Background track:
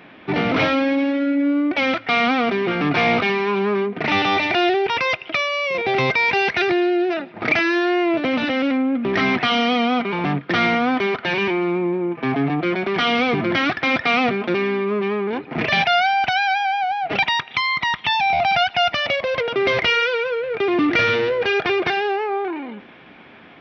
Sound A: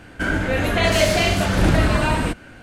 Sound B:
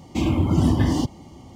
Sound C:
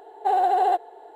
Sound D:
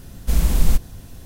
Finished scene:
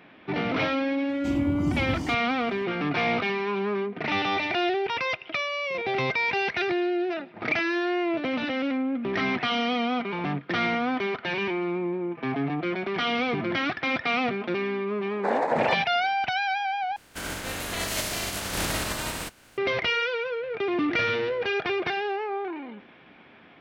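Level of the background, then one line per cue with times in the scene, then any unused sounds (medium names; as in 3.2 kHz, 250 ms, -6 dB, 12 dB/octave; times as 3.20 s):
background track -7.5 dB
1.09 s: add B -10 dB
14.98 s: add C -4.5 dB + noise-vocoded speech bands 6
16.96 s: replace with A -12.5 dB + spectral contrast reduction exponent 0.42
not used: D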